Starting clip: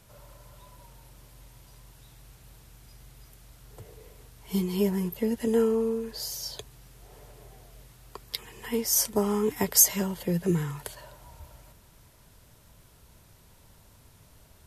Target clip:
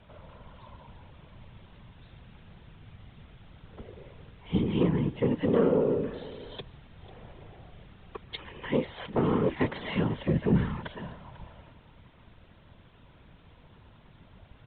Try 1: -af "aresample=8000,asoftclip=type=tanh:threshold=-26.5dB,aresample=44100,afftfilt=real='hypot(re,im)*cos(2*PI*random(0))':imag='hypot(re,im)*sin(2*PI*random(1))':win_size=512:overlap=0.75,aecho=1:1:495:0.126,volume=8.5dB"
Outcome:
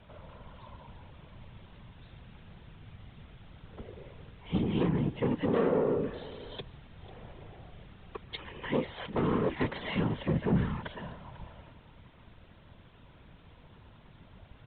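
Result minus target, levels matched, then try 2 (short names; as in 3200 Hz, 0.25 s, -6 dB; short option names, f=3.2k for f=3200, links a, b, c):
soft clip: distortion +7 dB
-af "aresample=8000,asoftclip=type=tanh:threshold=-20dB,aresample=44100,afftfilt=real='hypot(re,im)*cos(2*PI*random(0))':imag='hypot(re,im)*sin(2*PI*random(1))':win_size=512:overlap=0.75,aecho=1:1:495:0.126,volume=8.5dB"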